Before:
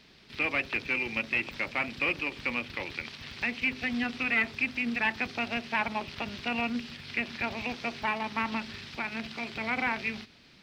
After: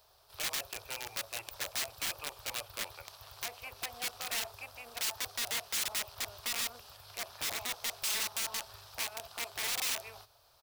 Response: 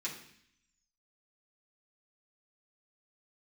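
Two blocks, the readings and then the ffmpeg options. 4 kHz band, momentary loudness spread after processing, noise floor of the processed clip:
+2.5 dB, 10 LU, -65 dBFS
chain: -af "firequalizer=gain_entry='entry(110,0);entry(170,-25);entry(240,-29);entry(390,-8);entry(620,6);entry(1200,-1);entry(2000,-24);entry(3100,-18);entry(12000,8)':delay=0.05:min_phase=1,aeval=exprs='(mod(44.7*val(0)+1,2)-1)/44.7':c=same,tiltshelf=f=1300:g=-7"

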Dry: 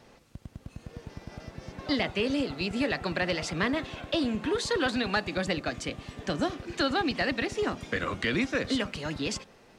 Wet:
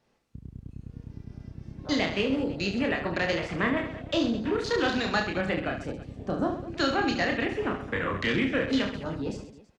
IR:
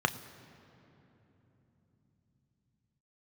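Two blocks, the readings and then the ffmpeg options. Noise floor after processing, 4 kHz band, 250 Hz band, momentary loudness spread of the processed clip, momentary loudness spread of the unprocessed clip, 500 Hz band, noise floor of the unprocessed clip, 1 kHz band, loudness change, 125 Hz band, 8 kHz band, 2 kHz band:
-58 dBFS, -0.5 dB, +2.0 dB, 18 LU, 17 LU, +2.0 dB, -57 dBFS, +2.0 dB, +1.5 dB, +2.0 dB, -5.0 dB, +1.5 dB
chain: -af "afwtdn=0.0158,aecho=1:1:30|72|130.8|213.1|328.4:0.631|0.398|0.251|0.158|0.1"

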